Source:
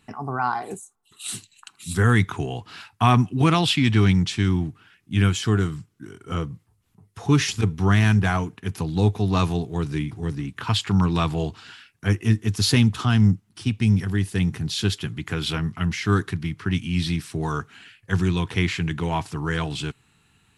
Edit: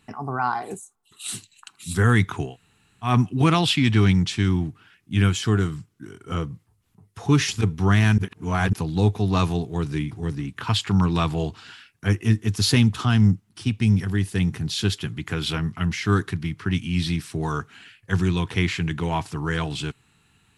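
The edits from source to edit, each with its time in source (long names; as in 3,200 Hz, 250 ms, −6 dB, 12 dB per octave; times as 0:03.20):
0:02.49–0:03.09: fill with room tone, crossfade 0.16 s
0:08.18–0:08.73: reverse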